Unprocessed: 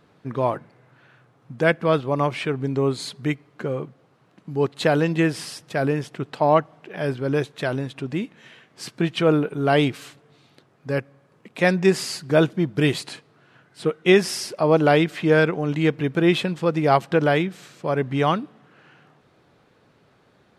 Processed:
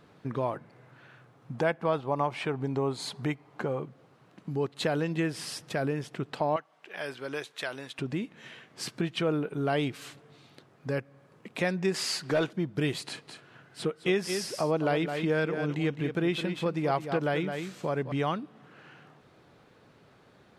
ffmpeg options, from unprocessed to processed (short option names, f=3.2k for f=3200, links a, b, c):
-filter_complex "[0:a]asettb=1/sr,asplit=3[a][b][c];[a]atrim=end=1.544[d];[b]atrim=start=1.54:end=3.8,asetpts=PTS-STARTPTS,afade=t=in:d=0.004:c=qsin,afade=t=out:st=2.256:d=0.004:c=qsin,equalizer=f=840:w=1.9:g=9.5[e];[c]atrim=start=3.796[f];[d][e]acrossfade=d=0.004:c1=hsin:c2=qsin[g];[g][f]acrossfade=d=0.004:c1=qsin:c2=hsin,asettb=1/sr,asplit=3[h][i][j];[h]atrim=end=6.564[k];[i]atrim=start=6.56:end=7.99,asetpts=PTS-STARTPTS,afade=t=in:d=0.004:c=qsin,afade=t=out:st=1.426:d=0.004:c=qsin,highpass=f=1.4k:p=1[l];[j]atrim=start=7.986[m];[k][l]acrossfade=d=0.004:c1=hsin:c2=qsin[n];[n][m]acrossfade=d=0.004:c1=qsin:c2=hsin,asettb=1/sr,asplit=3[o][p][q];[o]atrim=end=11.944[r];[p]atrim=start=11.94:end=12.53,asetpts=PTS-STARTPTS,afade=t=in:d=0.004:c=qsin,afade=t=out:st=0.586:d=0.004:c=qsin,asplit=2[s][t];[t]highpass=f=720:p=1,volume=13dB,asoftclip=type=tanh:threshold=-6.5dB[u];[s][u]amix=inputs=2:normalize=0,lowpass=f=5.6k:p=1,volume=-6dB[v];[q]atrim=start=12.526[w];[r][v]acrossfade=d=0.004:c1=hsin:c2=qsin[x];[x][w]acrossfade=d=0.004:c1=qsin:c2=hsin,asettb=1/sr,asplit=3[y][z][aa];[y]atrim=end=13.064[ab];[z]atrim=start=13.06:end=18.12,asetpts=PTS-STARTPTS,afade=t=in:d=0.004:c=qsin,afade=t=out:st=5.056:d=0.004:c=qsin,aecho=1:1:211:0.316,atrim=end_sample=223146[ac];[aa]atrim=start=18.116[ad];[ab][ac]acrossfade=d=0.004:c1=hsin:c2=qsin[ae];[ae][ad]acrossfade=d=0.004:c1=qsin:c2=hsin,acompressor=threshold=-33dB:ratio=2"